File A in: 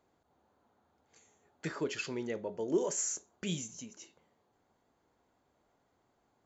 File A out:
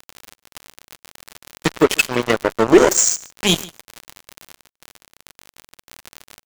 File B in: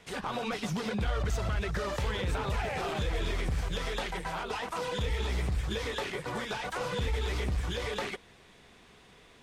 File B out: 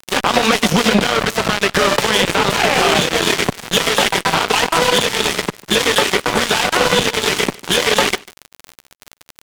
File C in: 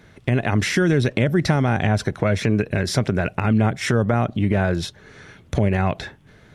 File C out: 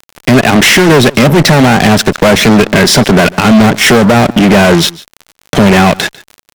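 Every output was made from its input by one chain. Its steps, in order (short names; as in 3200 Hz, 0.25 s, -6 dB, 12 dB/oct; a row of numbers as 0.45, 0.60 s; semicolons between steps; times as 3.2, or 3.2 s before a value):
HPF 160 Hz 24 dB/oct; dynamic EQ 3000 Hz, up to +6 dB, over -52 dBFS, Q 4.1; fuzz box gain 27 dB, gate -35 dBFS; crackle 43/s -32 dBFS; echo 0.147 s -24 dB; maximiser +14 dB; normalise peaks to -1.5 dBFS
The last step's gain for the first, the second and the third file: -0.5, -0.5, -0.5 dB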